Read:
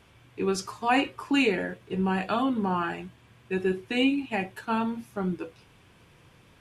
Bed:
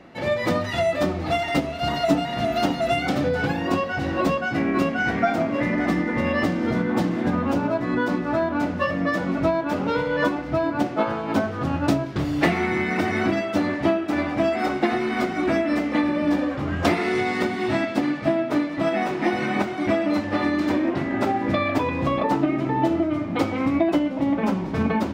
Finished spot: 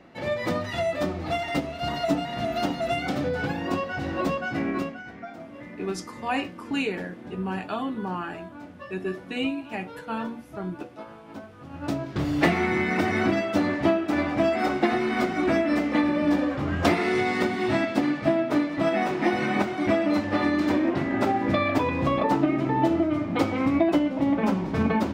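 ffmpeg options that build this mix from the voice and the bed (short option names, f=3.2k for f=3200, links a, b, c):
-filter_complex "[0:a]adelay=5400,volume=-4dB[a];[1:a]volume=13dB,afade=t=out:st=4.69:d=0.33:silence=0.199526,afade=t=in:st=11.69:d=0.6:silence=0.133352[b];[a][b]amix=inputs=2:normalize=0"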